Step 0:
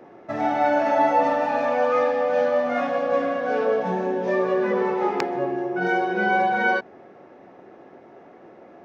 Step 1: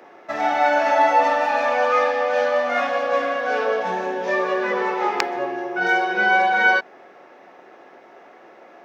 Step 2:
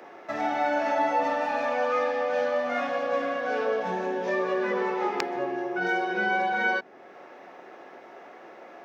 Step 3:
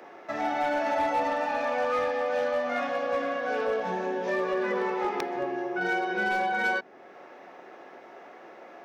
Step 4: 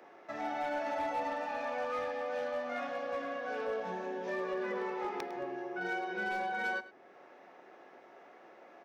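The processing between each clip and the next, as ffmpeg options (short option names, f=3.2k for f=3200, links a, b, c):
-af "highpass=f=1.4k:p=1,volume=9dB"
-filter_complex "[0:a]acrossover=split=380[a][b];[b]acompressor=threshold=-41dB:ratio=1.5[c];[a][c]amix=inputs=2:normalize=0"
-af "volume=20dB,asoftclip=hard,volume=-20dB,volume=-1dB"
-af "aecho=1:1:104:0.158,volume=-8.5dB"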